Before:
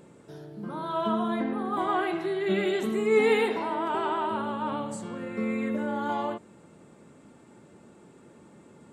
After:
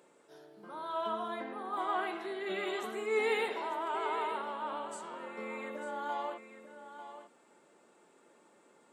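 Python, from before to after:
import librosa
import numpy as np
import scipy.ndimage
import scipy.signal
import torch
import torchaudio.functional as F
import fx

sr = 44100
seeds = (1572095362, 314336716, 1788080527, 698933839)

y = scipy.signal.sosfilt(scipy.signal.butter(2, 480.0, 'highpass', fs=sr, output='sos'), x)
y = y + 10.0 ** (-11.5 / 20.0) * np.pad(y, (int(895 * sr / 1000.0), 0))[:len(y)]
y = fx.attack_slew(y, sr, db_per_s=220.0)
y = y * 10.0 ** (-5.5 / 20.0)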